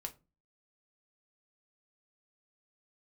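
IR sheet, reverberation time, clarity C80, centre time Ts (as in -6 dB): 0.30 s, 25.0 dB, 6 ms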